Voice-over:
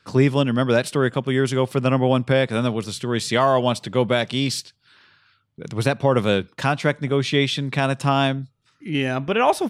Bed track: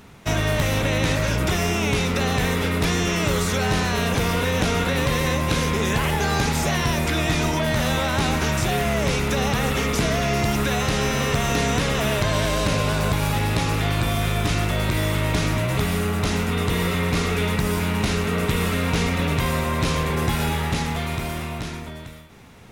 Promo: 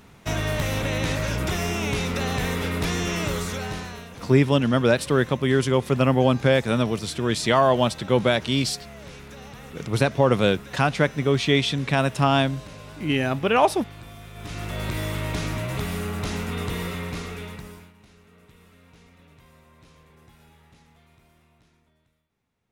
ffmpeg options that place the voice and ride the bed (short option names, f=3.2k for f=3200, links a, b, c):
-filter_complex "[0:a]adelay=4150,volume=-0.5dB[a];[1:a]volume=10dB,afade=t=out:st=3.19:d=0.89:silence=0.158489,afade=t=in:st=14.33:d=0.54:silence=0.199526,afade=t=out:st=16.65:d=1.28:silence=0.0530884[b];[a][b]amix=inputs=2:normalize=0"